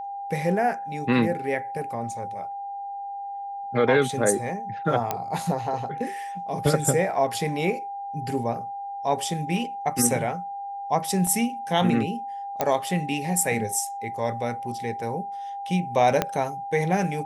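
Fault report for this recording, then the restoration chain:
whine 800 Hz -31 dBFS
5.11 s: pop -10 dBFS
11.27 s: dropout 2.3 ms
12.61 s: pop -9 dBFS
16.22 s: pop -7 dBFS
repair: de-click; band-stop 800 Hz, Q 30; interpolate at 11.27 s, 2.3 ms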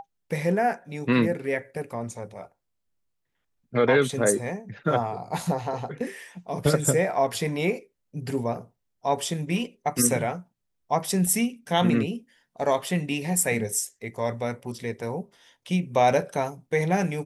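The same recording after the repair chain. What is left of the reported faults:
16.22 s: pop

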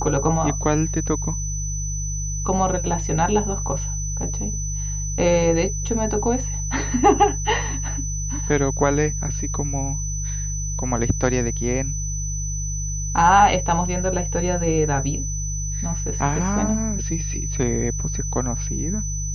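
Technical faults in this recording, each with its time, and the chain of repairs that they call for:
hum 50 Hz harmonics 3 -27 dBFS
whine 6 kHz -29 dBFS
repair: band-stop 6 kHz, Q 30; de-hum 50 Hz, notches 3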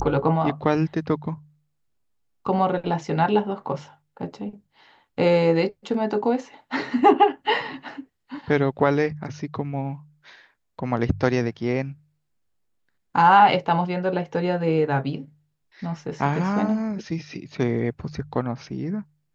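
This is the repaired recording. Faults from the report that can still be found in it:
nothing left

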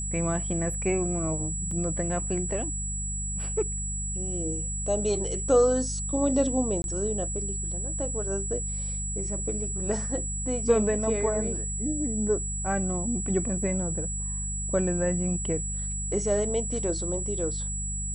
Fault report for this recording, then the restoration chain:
hum 50 Hz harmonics 4 -34 dBFS
whine 7.8 kHz -32 dBFS
1.71 s: dropout 3.7 ms
6.82–6.84 s: dropout 21 ms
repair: de-hum 50 Hz, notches 4; band-stop 7.8 kHz, Q 30; interpolate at 1.71 s, 3.7 ms; interpolate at 6.82 s, 21 ms

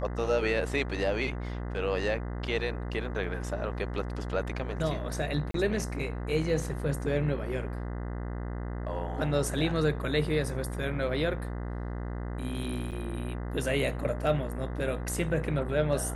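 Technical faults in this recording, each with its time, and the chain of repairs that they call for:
buzz 60 Hz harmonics 34 -35 dBFS
5.51–5.54 s: dropout 33 ms
12.91–12.92 s: dropout 8 ms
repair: de-hum 60 Hz, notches 34; interpolate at 5.51 s, 33 ms; interpolate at 12.91 s, 8 ms

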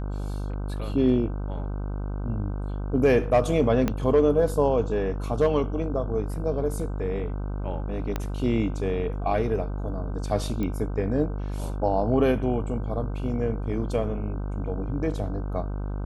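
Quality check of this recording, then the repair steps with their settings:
buzz 50 Hz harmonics 31 -30 dBFS
3.88 s: pop -12 dBFS
8.16 s: pop -14 dBFS
10.63 s: pop -18 dBFS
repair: de-click; de-hum 50 Hz, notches 31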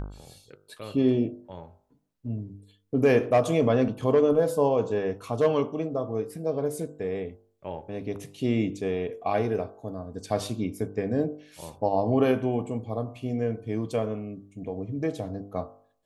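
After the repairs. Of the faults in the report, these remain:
3.88 s: pop
8.16 s: pop
10.63 s: pop

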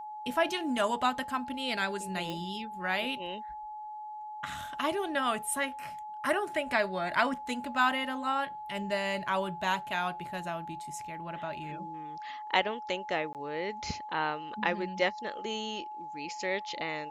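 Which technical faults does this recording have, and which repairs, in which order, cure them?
whine 850 Hz -39 dBFS
2.30 s: pop -23 dBFS
13.33–13.35 s: dropout 18 ms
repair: de-click; band-stop 850 Hz, Q 30; interpolate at 13.33 s, 18 ms

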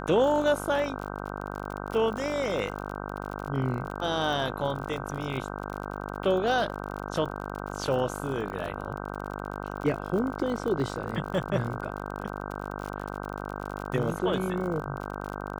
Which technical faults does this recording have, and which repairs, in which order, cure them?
buzz 50 Hz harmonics 31 -36 dBFS
crackle 52 per s -34 dBFS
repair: de-click; de-hum 50 Hz, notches 31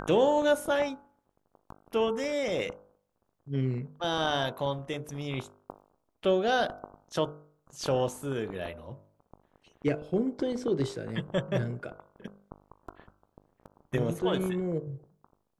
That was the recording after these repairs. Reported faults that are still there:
nothing left

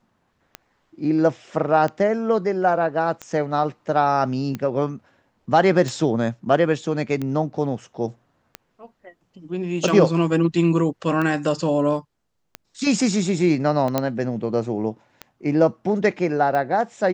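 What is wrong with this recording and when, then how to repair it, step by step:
tick 45 rpm -15 dBFS
13.98 s: pop -6 dBFS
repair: de-click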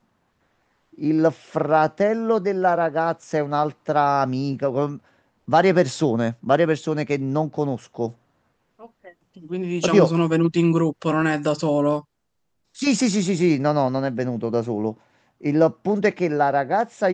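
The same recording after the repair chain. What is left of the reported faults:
nothing left

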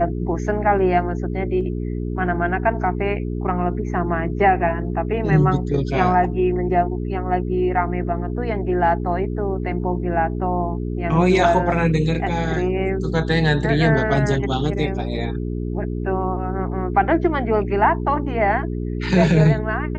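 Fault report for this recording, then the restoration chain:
hum 60 Hz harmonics 7 -25 dBFS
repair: de-hum 60 Hz, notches 7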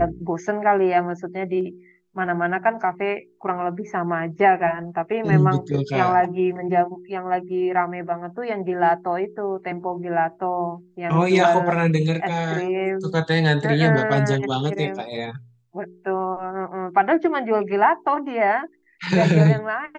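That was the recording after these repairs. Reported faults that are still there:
nothing left

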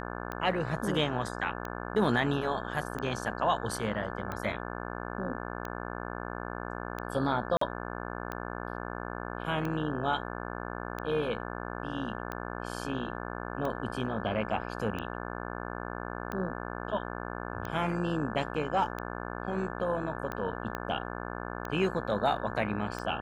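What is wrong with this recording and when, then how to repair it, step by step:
buzz 60 Hz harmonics 29 -38 dBFS
tick 45 rpm -22 dBFS
7.57–7.61 s: dropout 44 ms
20.75 s: pop -20 dBFS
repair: de-click; de-hum 60 Hz, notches 29; interpolate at 7.57 s, 44 ms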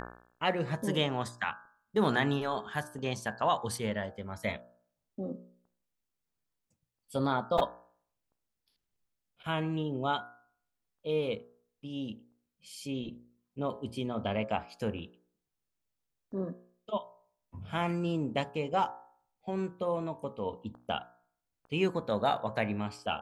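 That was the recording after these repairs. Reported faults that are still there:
20.75 s: pop

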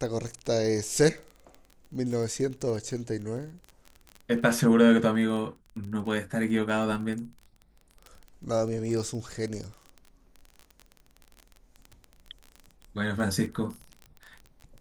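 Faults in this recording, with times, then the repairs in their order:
crackle 22 per s -34 dBFS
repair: de-click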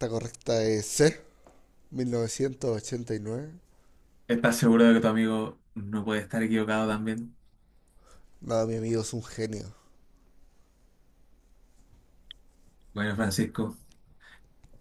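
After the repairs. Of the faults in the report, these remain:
nothing left

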